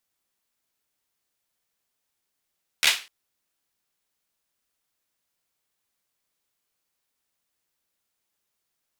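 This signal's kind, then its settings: hand clap length 0.25 s, apart 13 ms, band 2700 Hz, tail 0.31 s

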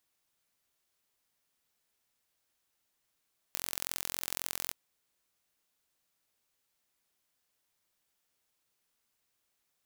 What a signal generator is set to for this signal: pulse train 43.8/s, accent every 2, -6 dBFS 1.17 s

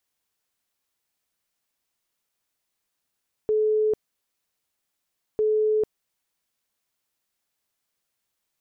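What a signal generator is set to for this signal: tone bursts 430 Hz, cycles 192, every 1.90 s, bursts 2, -18.5 dBFS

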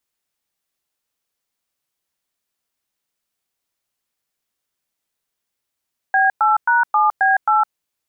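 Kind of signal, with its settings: DTMF "B8#7B8", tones 0.16 s, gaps 0.107 s, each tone -14.5 dBFS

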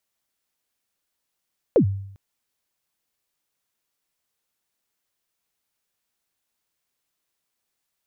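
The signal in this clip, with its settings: kick drum length 0.40 s, from 570 Hz, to 98 Hz, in 91 ms, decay 0.71 s, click off, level -10 dB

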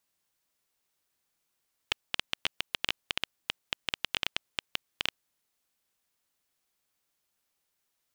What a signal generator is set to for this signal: random clicks 9/s -9 dBFS 3.34 s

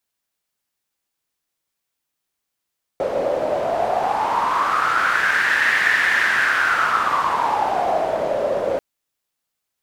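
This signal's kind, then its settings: wind-like swept noise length 5.79 s, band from 550 Hz, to 1800 Hz, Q 6.7, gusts 1, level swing 4 dB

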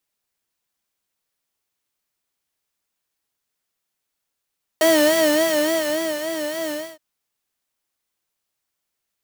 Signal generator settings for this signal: synth patch with vibrato D#5, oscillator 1 square, oscillator 2 saw, interval -12 st, oscillator 2 level -0.5 dB, noise -5 dB, filter highpass, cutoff 120 Hz, Q 1.7, filter envelope 2 oct, filter decay 0.07 s, filter sustain 25%, attack 1.5 ms, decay 1.39 s, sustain -11 dB, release 0.27 s, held 1.90 s, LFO 3.5 Hz, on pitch 90 cents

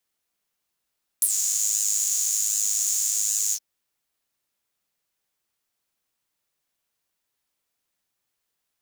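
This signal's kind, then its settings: synth patch with pulse-width modulation G#2, oscillator 2 saw, detune 22 cents, noise -13 dB, filter highpass, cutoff 5600 Hz, Q 8.2, filter envelope 1 oct, filter decay 0.10 s, filter sustain 30%, attack 3.2 ms, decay 0.05 s, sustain -8 dB, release 0.06 s, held 2.31 s, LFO 1.3 Hz, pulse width 24%, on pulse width 15%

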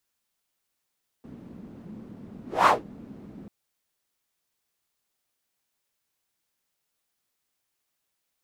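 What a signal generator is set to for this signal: whoosh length 2.24 s, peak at 1.43, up 0.23 s, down 0.18 s, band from 220 Hz, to 1100 Hz, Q 3, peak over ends 26 dB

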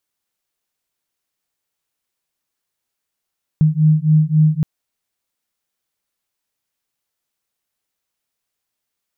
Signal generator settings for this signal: beating tones 153 Hz, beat 3.7 Hz, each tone -13.5 dBFS 1.02 s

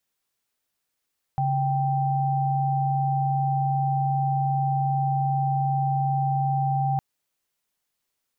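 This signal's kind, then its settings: chord C#3/G5 sine, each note -23.5 dBFS 5.61 s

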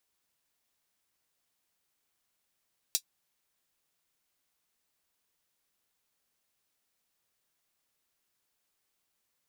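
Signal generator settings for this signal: closed hi-hat, high-pass 4400 Hz, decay 0.08 s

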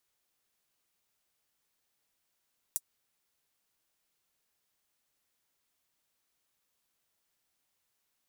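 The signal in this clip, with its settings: closed hi-hat, high-pass 8000 Hz, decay 0.05 s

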